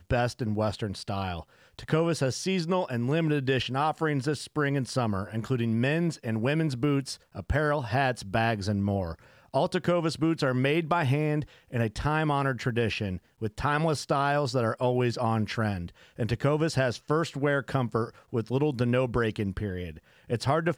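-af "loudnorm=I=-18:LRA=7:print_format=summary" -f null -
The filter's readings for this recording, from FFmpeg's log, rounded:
Input Integrated:    -28.3 LUFS
Input True Peak:     -10.4 dBTP
Input LRA:             1.7 LU
Input Threshold:     -38.5 LUFS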